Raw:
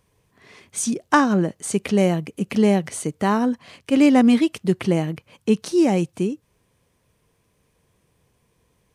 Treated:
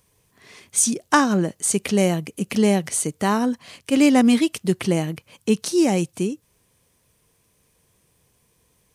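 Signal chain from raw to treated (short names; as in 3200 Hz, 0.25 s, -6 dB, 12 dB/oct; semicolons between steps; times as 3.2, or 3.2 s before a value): high shelf 4300 Hz +11 dB; gain -1 dB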